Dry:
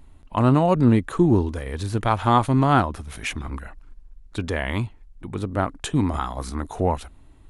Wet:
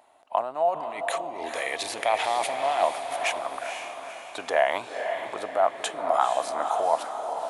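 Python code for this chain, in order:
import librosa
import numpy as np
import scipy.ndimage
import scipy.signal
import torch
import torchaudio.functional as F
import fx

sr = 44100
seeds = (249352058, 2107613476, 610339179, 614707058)

p1 = fx.high_shelf_res(x, sr, hz=1700.0, db=6.5, q=3.0, at=(0.83, 2.9))
p2 = fx.over_compress(p1, sr, threshold_db=-24.0, ratio=-1.0)
p3 = fx.highpass_res(p2, sr, hz=680.0, q=4.9)
p4 = p3 + fx.echo_diffused(p3, sr, ms=480, feedback_pct=50, wet_db=-6.5, dry=0)
y = p4 * librosa.db_to_amplitude(-4.0)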